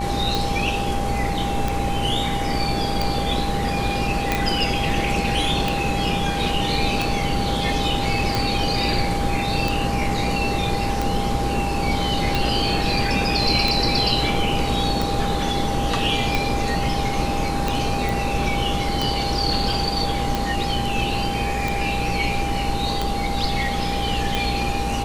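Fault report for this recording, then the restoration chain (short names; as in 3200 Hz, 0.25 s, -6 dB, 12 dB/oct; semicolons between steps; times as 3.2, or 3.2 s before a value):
buzz 60 Hz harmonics 19 -28 dBFS
tick 45 rpm
tone 800 Hz -26 dBFS
4.32 pop
18.09 pop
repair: de-click; de-hum 60 Hz, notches 19; notch 800 Hz, Q 30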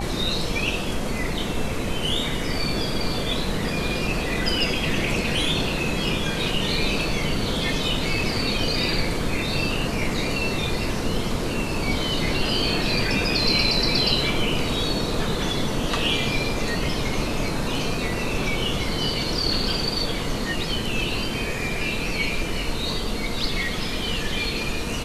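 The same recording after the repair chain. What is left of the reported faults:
none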